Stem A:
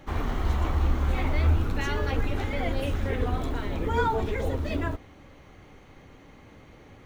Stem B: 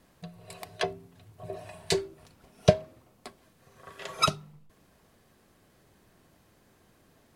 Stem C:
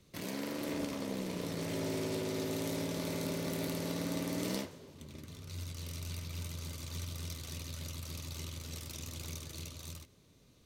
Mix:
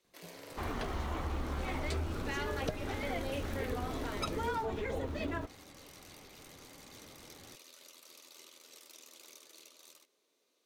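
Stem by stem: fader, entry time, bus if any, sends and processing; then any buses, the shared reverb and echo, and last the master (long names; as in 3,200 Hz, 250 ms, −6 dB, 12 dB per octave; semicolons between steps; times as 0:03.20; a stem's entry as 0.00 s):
−4.0 dB, 0.50 s, no send, phase distortion by the signal itself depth 0.062 ms; low-shelf EQ 110 Hz −9.5 dB
−12.0 dB, 0.00 s, no send, noise gate with hold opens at −51 dBFS
−8.0 dB, 0.00 s, no send, high-pass filter 360 Hz 24 dB per octave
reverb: not used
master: downward compressor 4 to 1, threshold −32 dBFS, peak gain reduction 9 dB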